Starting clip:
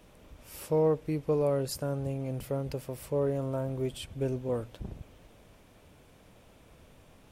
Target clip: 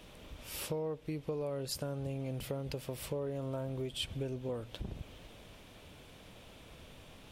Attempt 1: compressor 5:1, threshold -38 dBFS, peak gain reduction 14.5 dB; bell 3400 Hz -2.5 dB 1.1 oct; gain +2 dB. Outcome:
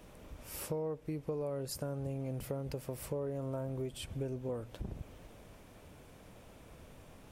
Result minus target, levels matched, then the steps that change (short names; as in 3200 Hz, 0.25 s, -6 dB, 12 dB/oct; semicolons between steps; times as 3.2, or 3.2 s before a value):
4000 Hz band -7.5 dB
change: bell 3400 Hz +7.5 dB 1.1 oct